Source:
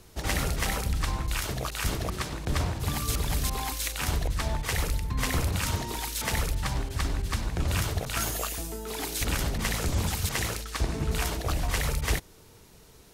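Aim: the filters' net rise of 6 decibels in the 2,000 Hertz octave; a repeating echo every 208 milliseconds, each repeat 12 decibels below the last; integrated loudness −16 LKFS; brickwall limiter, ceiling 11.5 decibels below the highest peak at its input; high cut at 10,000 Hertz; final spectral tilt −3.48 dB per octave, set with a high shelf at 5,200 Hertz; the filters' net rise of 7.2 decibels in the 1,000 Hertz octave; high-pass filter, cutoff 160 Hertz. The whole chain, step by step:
high-pass filter 160 Hz
low-pass filter 10,000 Hz
parametric band 1,000 Hz +7.5 dB
parametric band 2,000 Hz +4.5 dB
high-shelf EQ 5,200 Hz +4 dB
brickwall limiter −22 dBFS
repeating echo 208 ms, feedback 25%, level −12 dB
level +16 dB

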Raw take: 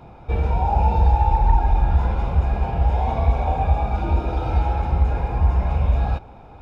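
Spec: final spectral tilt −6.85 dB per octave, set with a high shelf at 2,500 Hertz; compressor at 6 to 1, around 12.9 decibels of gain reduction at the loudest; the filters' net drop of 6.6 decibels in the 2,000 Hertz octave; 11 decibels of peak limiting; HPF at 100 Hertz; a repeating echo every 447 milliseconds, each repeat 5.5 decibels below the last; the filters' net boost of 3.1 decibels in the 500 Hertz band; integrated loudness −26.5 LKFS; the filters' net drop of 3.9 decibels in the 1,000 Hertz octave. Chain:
high-pass filter 100 Hz
parametric band 500 Hz +6.5 dB
parametric band 1,000 Hz −6.5 dB
parametric band 2,000 Hz −3.5 dB
high-shelf EQ 2,500 Hz −7 dB
downward compressor 6 to 1, threshold −33 dBFS
brickwall limiter −34.5 dBFS
repeating echo 447 ms, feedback 53%, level −5.5 dB
level +15 dB

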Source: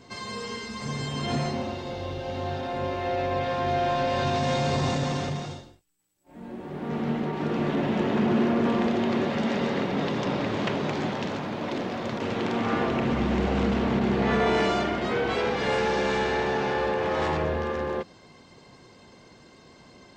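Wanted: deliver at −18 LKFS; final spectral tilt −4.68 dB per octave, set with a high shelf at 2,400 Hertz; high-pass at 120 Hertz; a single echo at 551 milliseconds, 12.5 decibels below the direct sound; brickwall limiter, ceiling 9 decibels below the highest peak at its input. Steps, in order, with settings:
high-pass filter 120 Hz
high-shelf EQ 2,400 Hz +7.5 dB
brickwall limiter −20 dBFS
single-tap delay 551 ms −12.5 dB
level +11 dB

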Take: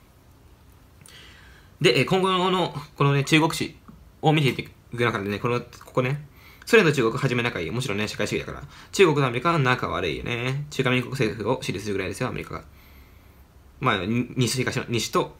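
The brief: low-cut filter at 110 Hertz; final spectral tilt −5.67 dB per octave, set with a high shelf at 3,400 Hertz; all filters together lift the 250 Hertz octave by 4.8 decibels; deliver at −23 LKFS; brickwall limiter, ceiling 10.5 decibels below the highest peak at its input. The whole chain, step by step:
high-pass filter 110 Hz
parametric band 250 Hz +7 dB
high-shelf EQ 3,400 Hz −8.5 dB
level +2.5 dB
brickwall limiter −11 dBFS

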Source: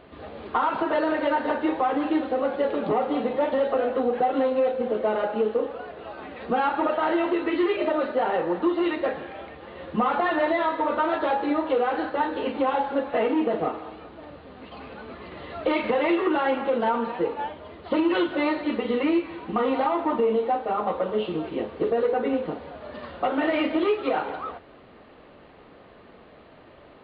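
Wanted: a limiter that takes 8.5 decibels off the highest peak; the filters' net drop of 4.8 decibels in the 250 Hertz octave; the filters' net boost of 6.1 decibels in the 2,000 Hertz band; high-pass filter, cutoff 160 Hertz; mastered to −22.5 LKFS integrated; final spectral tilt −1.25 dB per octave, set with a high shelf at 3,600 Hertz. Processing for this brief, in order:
high-pass filter 160 Hz
parametric band 250 Hz −6.5 dB
parametric band 2,000 Hz +6.5 dB
high-shelf EQ 3,600 Hz +4.5 dB
level +6 dB
brickwall limiter −13 dBFS

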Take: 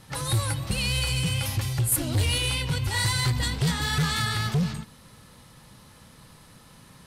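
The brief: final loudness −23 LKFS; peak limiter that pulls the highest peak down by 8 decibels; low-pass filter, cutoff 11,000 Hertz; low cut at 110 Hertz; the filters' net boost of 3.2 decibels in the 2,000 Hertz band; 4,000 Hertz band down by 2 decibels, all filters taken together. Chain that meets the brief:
high-pass filter 110 Hz
low-pass filter 11,000 Hz
parametric band 2,000 Hz +5 dB
parametric band 4,000 Hz −4.5 dB
level +6 dB
brickwall limiter −14 dBFS

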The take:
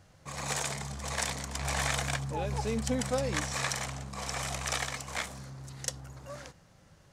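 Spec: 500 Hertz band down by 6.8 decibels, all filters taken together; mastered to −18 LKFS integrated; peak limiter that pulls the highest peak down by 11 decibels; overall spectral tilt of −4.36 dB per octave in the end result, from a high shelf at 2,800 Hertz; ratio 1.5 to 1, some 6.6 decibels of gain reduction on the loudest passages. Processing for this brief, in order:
parametric band 500 Hz −7.5 dB
high-shelf EQ 2,800 Hz −7.5 dB
downward compressor 1.5 to 1, threshold −48 dBFS
level +28 dB
brickwall limiter −8 dBFS

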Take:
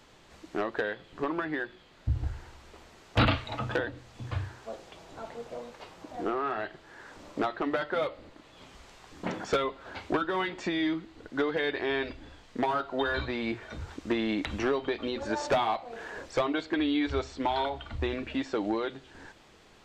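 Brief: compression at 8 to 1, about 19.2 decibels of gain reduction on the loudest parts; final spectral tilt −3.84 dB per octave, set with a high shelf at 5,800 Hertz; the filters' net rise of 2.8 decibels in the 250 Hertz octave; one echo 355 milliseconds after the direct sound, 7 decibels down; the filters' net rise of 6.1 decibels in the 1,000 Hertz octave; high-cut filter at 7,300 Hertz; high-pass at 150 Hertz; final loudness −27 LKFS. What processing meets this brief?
high-pass filter 150 Hz
low-pass filter 7,300 Hz
parametric band 250 Hz +3.5 dB
parametric band 1,000 Hz +8 dB
high-shelf EQ 5,800 Hz −7 dB
downward compressor 8 to 1, threshold −39 dBFS
single-tap delay 355 ms −7 dB
level +16 dB

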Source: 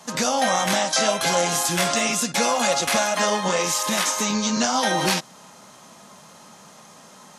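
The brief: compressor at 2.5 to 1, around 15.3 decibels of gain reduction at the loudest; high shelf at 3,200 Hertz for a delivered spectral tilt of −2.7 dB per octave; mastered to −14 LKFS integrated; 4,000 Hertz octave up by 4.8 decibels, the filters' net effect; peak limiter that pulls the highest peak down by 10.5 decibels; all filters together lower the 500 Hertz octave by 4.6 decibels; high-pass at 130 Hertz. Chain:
high-pass filter 130 Hz
parametric band 500 Hz −6 dB
high-shelf EQ 3,200 Hz +3.5 dB
parametric band 4,000 Hz +3.5 dB
downward compressor 2.5 to 1, threshold −39 dBFS
level +23.5 dB
brickwall limiter −4.5 dBFS

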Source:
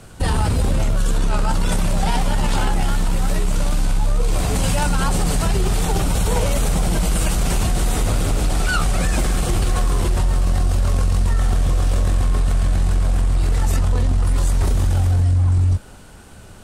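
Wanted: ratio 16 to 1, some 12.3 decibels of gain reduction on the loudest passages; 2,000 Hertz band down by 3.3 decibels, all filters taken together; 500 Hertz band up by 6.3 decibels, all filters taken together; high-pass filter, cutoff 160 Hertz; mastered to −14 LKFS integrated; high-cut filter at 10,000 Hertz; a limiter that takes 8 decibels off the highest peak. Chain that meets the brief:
high-pass filter 160 Hz
low-pass filter 10,000 Hz
parametric band 500 Hz +8 dB
parametric band 2,000 Hz −5.5 dB
downward compressor 16 to 1, threshold −26 dBFS
level +19.5 dB
brickwall limiter −4.5 dBFS

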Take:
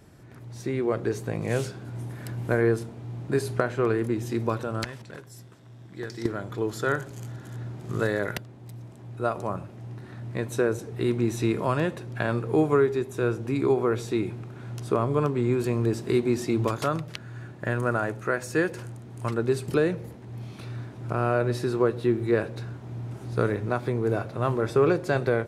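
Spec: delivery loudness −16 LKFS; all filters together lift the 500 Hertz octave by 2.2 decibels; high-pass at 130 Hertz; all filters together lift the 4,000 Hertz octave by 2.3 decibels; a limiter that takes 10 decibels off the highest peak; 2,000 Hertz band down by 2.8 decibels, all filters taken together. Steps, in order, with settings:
high-pass filter 130 Hz
parametric band 500 Hz +3 dB
parametric band 2,000 Hz −5 dB
parametric band 4,000 Hz +4 dB
level +12.5 dB
brickwall limiter −3.5 dBFS

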